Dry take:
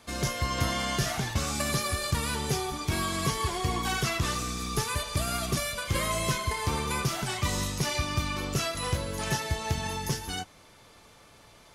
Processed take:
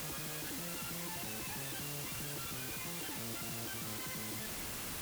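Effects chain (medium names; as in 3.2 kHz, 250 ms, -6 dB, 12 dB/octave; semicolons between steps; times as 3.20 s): steep low-pass 1.6 kHz 36 dB/octave; bass shelf 180 Hz +10 dB; peak limiter -49 dBFS, peak gain reduction 39.5 dB; word length cut 8-bit, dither triangular; speed mistake 33 rpm record played at 78 rpm; trim +8.5 dB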